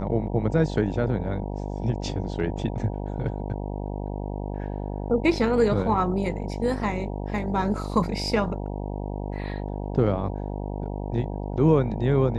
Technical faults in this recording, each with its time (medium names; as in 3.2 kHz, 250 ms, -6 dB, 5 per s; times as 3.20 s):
buzz 50 Hz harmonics 19 -31 dBFS